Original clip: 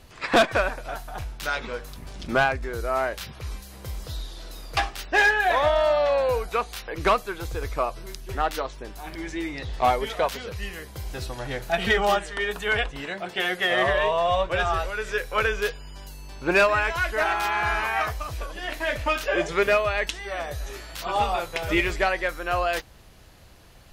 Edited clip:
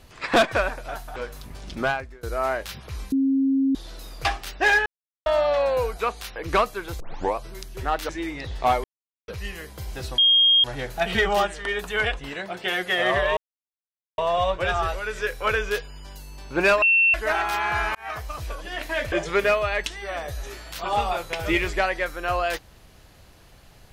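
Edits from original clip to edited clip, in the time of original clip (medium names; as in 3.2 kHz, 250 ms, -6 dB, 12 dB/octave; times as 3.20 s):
1.16–1.68 s: delete
2.22–2.75 s: fade out, to -23 dB
3.64–4.27 s: bleep 270 Hz -17.5 dBFS
5.38–5.78 s: mute
7.52 s: tape start 0.37 s
8.61–9.27 s: delete
10.02–10.46 s: mute
11.36 s: add tone 3.24 kHz -13.5 dBFS 0.46 s
14.09 s: insert silence 0.81 s
16.73–17.05 s: bleep 2.7 kHz -14.5 dBFS
17.86–18.40 s: fade in equal-power
19.03–19.35 s: delete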